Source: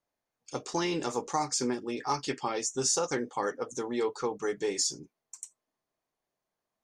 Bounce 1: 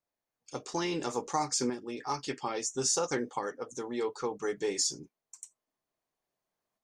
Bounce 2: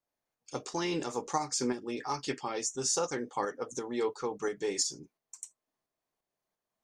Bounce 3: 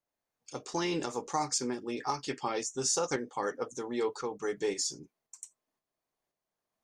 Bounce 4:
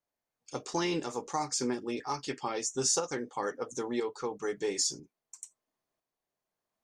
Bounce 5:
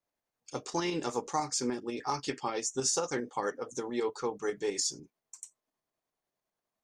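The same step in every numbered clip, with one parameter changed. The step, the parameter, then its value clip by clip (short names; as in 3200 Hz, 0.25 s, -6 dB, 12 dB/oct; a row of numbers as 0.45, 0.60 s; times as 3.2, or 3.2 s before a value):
tremolo, rate: 0.59, 2.9, 1.9, 1, 10 Hz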